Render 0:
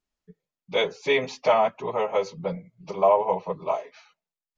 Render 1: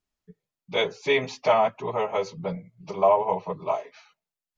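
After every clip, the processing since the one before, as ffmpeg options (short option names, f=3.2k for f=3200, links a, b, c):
-af "equalizer=f=110:t=o:w=0.46:g=6.5,bandreject=f=520:w=12"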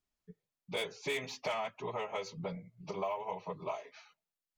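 -filter_complex "[0:a]acrossover=split=1700[a][b];[a]acompressor=threshold=-32dB:ratio=6[c];[b]asoftclip=type=tanh:threshold=-31.5dB[d];[c][d]amix=inputs=2:normalize=0,volume=-4dB"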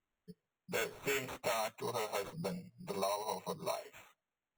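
-af "acrusher=samples=9:mix=1:aa=0.000001"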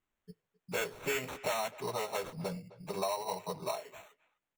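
-filter_complex "[0:a]asplit=2[a][b];[b]adelay=260,highpass=300,lowpass=3.4k,asoftclip=type=hard:threshold=-31dB,volume=-18dB[c];[a][c]amix=inputs=2:normalize=0,volume=2dB"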